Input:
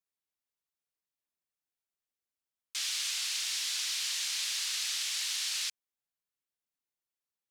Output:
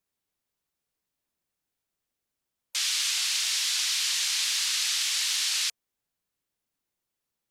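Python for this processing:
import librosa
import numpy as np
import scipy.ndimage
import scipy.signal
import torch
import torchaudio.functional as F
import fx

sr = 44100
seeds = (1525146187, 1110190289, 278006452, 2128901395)

y = fx.spec_gate(x, sr, threshold_db=-30, keep='strong')
y = fx.low_shelf(y, sr, hz=490.0, db=7.5)
y = y * 10.0 ** (6.5 / 20.0)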